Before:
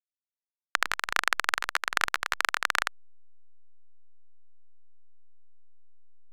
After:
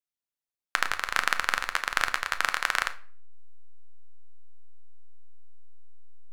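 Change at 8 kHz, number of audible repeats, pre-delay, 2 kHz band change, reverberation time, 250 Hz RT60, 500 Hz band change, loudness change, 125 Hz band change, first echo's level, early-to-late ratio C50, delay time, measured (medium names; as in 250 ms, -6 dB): +0.5 dB, no echo, 8 ms, +0.5 dB, 0.45 s, 0.60 s, +1.0 dB, +0.5 dB, no reading, no echo, 15.5 dB, no echo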